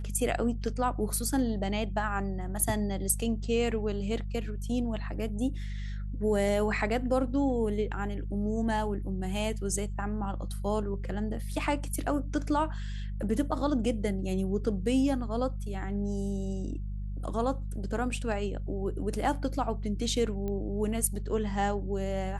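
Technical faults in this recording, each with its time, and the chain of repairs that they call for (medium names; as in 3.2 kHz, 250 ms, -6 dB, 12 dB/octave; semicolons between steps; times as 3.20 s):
hum 50 Hz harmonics 4 -35 dBFS
20.48 s: pop -24 dBFS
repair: de-click; de-hum 50 Hz, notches 4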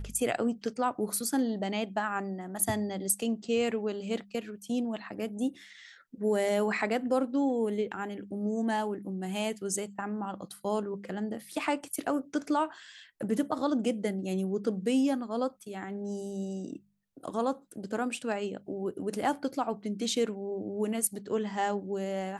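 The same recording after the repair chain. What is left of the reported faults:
nothing left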